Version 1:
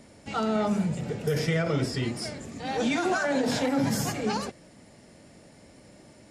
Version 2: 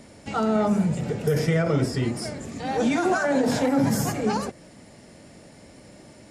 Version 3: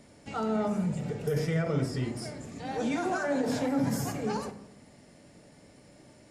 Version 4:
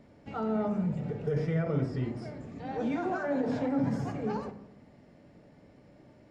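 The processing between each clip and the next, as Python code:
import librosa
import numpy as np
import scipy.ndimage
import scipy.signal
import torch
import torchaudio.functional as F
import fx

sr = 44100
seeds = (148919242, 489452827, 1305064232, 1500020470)

y1 = fx.dynamic_eq(x, sr, hz=3500.0, q=0.75, threshold_db=-47.0, ratio=4.0, max_db=-7)
y1 = y1 * 10.0 ** (4.5 / 20.0)
y2 = fx.room_shoebox(y1, sr, seeds[0], volume_m3=320.0, walls='mixed', distance_m=0.37)
y2 = y2 * 10.0 ** (-8.0 / 20.0)
y3 = fx.spacing_loss(y2, sr, db_at_10k=26)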